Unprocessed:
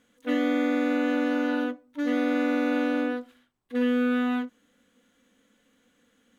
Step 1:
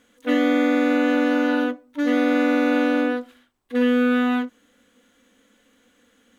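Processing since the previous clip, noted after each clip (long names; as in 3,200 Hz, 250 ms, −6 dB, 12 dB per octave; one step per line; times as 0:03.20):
parametric band 150 Hz −12 dB 0.5 octaves
level +6.5 dB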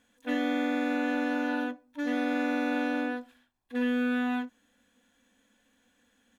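comb filter 1.2 ms, depth 46%
level −8.5 dB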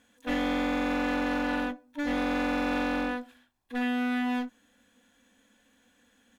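asymmetric clip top −36 dBFS
level +3.5 dB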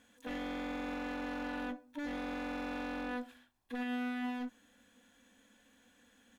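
brickwall limiter −30.5 dBFS, peak gain reduction 11.5 dB
level −1 dB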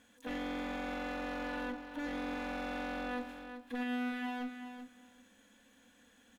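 repeating echo 382 ms, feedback 16%, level −9 dB
level +1 dB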